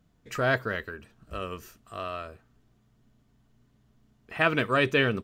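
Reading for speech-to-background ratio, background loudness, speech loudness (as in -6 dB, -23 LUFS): 19.5 dB, -47.5 LUFS, -28.0 LUFS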